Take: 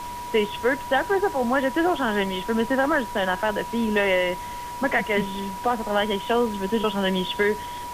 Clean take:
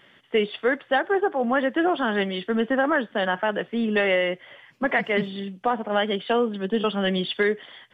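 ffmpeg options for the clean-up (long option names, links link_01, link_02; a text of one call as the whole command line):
ffmpeg -i in.wav -af "bandreject=frequency=970:width=30,afftdn=noise_reduction=18:noise_floor=-34" out.wav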